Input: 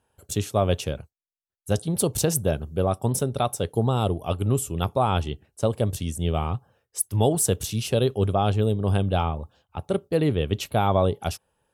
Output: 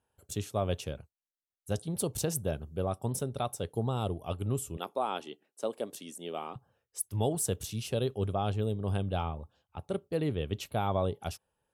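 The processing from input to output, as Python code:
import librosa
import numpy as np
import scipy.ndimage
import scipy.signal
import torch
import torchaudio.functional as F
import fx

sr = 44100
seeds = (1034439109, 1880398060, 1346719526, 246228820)

y = fx.highpass(x, sr, hz=250.0, slope=24, at=(4.77, 6.56))
y = y * 10.0 ** (-9.0 / 20.0)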